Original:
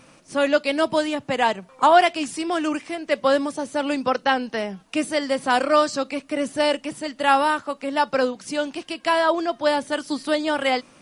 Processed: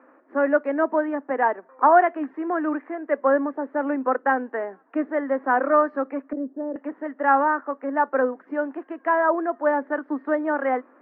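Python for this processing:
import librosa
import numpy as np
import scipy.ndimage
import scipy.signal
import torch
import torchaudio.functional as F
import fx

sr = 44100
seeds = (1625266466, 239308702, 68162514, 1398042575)

y = scipy.signal.sosfilt(scipy.signal.cheby1(4, 1.0, [260.0, 1800.0], 'bandpass', fs=sr, output='sos'), x)
y = fx.env_lowpass_down(y, sr, base_hz=340.0, full_db=-26.5, at=(6.24, 6.76))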